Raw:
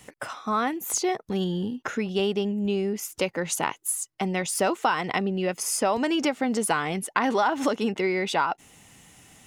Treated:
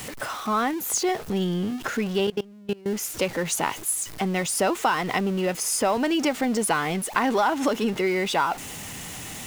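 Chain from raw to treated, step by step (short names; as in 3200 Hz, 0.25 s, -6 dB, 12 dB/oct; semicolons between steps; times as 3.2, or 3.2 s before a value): zero-crossing step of -32 dBFS; 2.26–2.86 level quantiser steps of 23 dB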